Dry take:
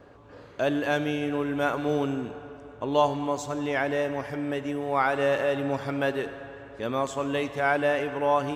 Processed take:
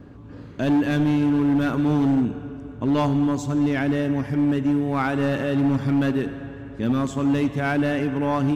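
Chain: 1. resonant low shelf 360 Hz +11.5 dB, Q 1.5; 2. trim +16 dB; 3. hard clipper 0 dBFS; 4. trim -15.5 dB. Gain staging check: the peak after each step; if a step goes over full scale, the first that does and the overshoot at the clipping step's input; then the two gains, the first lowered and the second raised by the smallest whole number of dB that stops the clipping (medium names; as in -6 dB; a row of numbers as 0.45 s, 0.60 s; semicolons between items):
-9.0 dBFS, +7.0 dBFS, 0.0 dBFS, -15.5 dBFS; step 2, 7.0 dB; step 2 +9 dB, step 4 -8.5 dB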